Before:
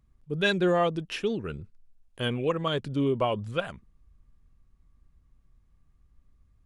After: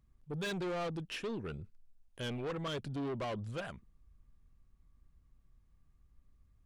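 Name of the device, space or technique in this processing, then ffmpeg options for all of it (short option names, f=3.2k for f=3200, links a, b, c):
saturation between pre-emphasis and de-emphasis: -af "highshelf=f=9.3k:g=8.5,asoftclip=type=tanh:threshold=-30.5dB,highshelf=f=9.3k:g=-8.5,volume=-4dB"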